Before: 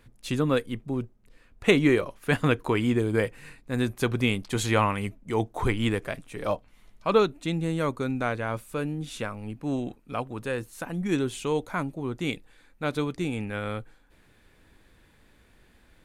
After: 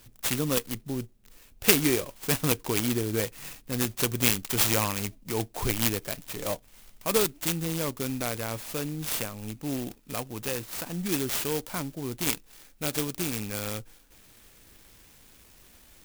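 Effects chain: resonant high shelf 2300 Hz +13 dB, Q 1.5; in parallel at -1.5 dB: compressor, threshold -33 dBFS, peak gain reduction 22.5 dB; on the sum: clock jitter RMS 0.084 ms; gain -5.5 dB

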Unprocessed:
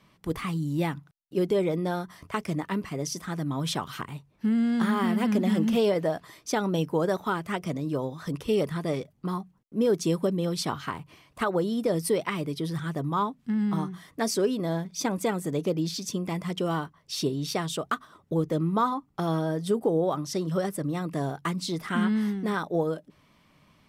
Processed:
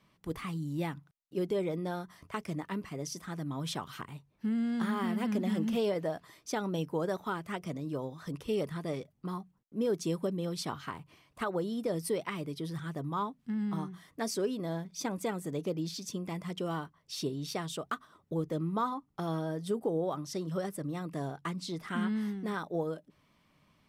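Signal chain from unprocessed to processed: 21.28–21.87 high shelf 11000 Hz -8 dB; gain -7 dB

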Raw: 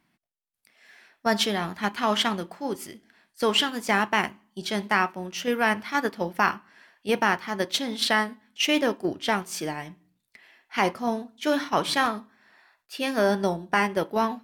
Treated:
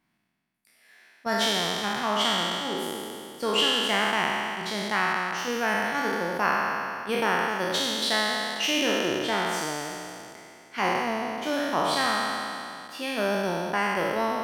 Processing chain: spectral trails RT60 2.61 s; gain -6.5 dB

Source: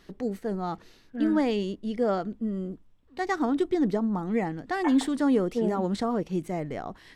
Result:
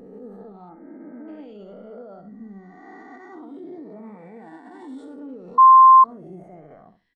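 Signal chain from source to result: spectral swells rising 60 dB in 2.55 s; 3.2–4.83 HPF 170 Hz 6 dB/oct; feedback echo 66 ms, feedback 29%, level -7 dB; limiter -19.5 dBFS, peak gain reduction 11 dB; 0.69–1.28 Chebyshev low-pass 2200 Hz, order 6; 5.58–6.04 bleep 1050 Hz -6 dBFS; spectral expander 1.5:1

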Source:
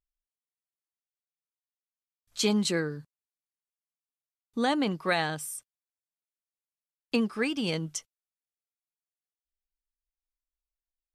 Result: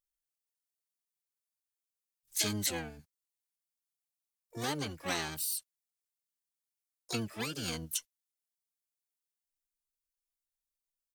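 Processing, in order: harmoniser -12 st -1 dB, +7 st -5 dB, +12 st -13 dB; pre-emphasis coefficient 0.8

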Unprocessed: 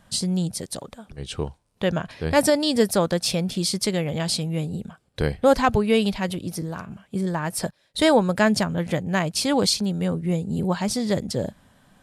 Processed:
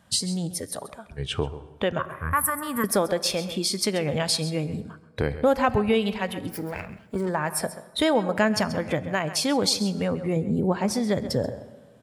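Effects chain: 6.49–7.29 minimum comb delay 0.41 ms; 10.36–10.96 bell 370 Hz +6 dB 2.9 oct; spectral noise reduction 9 dB; 1.99–2.84 EQ curve 140 Hz 0 dB, 340 Hz -18 dB, 750 Hz -17 dB, 1100 Hz +14 dB, 4500 Hz -30 dB, 12000 Hz +14 dB; tremolo 0.7 Hz, depth 37%; HPF 63 Hz; echo 0.133 s -16 dB; plate-style reverb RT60 1.5 s, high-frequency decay 0.6×, DRR 17 dB; compressor 2:1, threshold -31 dBFS, peak gain reduction 10.5 dB; gain +6.5 dB

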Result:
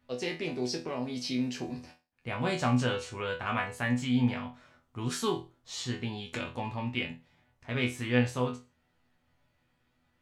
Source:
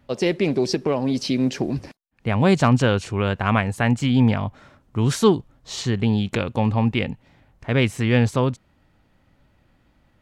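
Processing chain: tilt shelf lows -3.5 dB, about 770 Hz; resonator bank E2 fifth, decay 0.29 s

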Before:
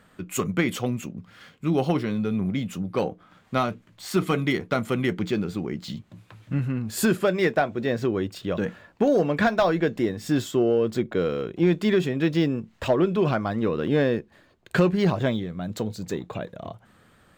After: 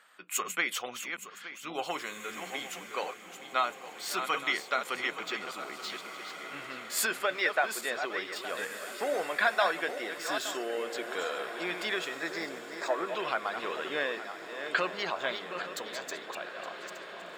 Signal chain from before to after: regenerating reverse delay 0.434 s, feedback 47%, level -8 dB; HPF 960 Hz 12 dB/oct; spectral gate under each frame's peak -30 dB strong; 12.19–13.08 Butterworth band-stop 3000 Hz, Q 1.8; diffused feedback echo 1.941 s, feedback 50%, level -11.5 dB

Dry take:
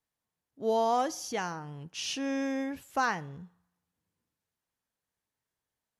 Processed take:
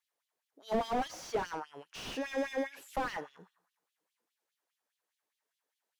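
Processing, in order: LFO high-pass sine 4.9 Hz 360–3500 Hz; slew limiter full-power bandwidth 24 Hz

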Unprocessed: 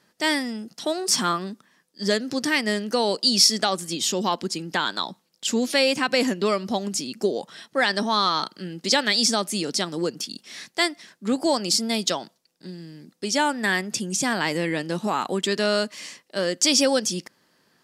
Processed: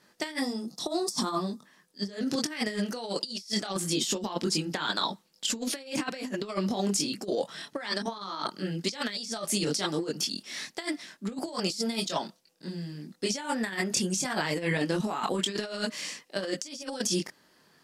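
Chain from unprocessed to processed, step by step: spectral gain 0.4–1.66, 1300–3400 Hz -12 dB; chorus voices 6, 0.99 Hz, delay 23 ms, depth 3.6 ms; negative-ratio compressor -30 dBFS, ratio -0.5

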